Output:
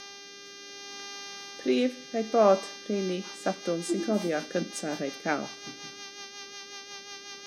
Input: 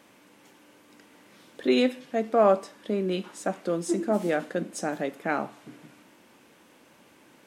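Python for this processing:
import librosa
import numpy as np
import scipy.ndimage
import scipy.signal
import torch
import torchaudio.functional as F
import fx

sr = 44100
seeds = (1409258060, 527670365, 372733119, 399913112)

y = fx.dmg_buzz(x, sr, base_hz=400.0, harmonics=16, level_db=-41.0, tilt_db=0, odd_only=False)
y = fx.rotary_switch(y, sr, hz=0.65, then_hz=5.5, switch_at_s=2.48)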